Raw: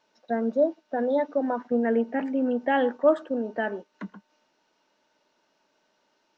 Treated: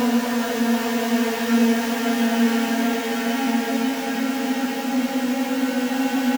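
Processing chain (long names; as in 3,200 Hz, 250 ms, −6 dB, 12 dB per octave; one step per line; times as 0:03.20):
spectral envelope flattened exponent 0.3
double-tracking delay 16 ms −5 dB
extreme stretch with random phases 8.3×, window 1.00 s, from 0:01.69
level +3.5 dB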